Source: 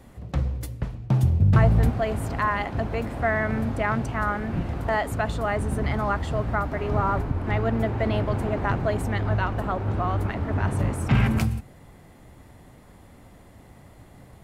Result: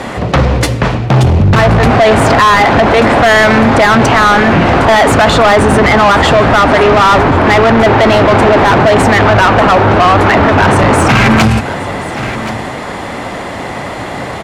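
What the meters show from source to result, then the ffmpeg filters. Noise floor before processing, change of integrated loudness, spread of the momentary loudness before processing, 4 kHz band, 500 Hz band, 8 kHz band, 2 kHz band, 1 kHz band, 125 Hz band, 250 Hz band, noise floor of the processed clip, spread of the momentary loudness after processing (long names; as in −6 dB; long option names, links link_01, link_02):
−50 dBFS, +17.5 dB, 8 LU, +26.5 dB, +20.5 dB, +22.0 dB, +21.0 dB, +21.0 dB, +11.5 dB, +17.5 dB, −21 dBFS, 14 LU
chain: -filter_complex "[0:a]lowpass=8000,asplit=2[link_01][link_02];[link_02]highpass=frequency=720:poles=1,volume=29dB,asoftclip=type=tanh:threshold=-7.5dB[link_03];[link_01][link_03]amix=inputs=2:normalize=0,lowpass=frequency=3500:poles=1,volume=-6dB,asplit=2[link_04][link_05];[link_05]aecho=0:1:1076:0.119[link_06];[link_04][link_06]amix=inputs=2:normalize=0,alimiter=level_in=15dB:limit=-1dB:release=50:level=0:latency=1,volume=-1dB"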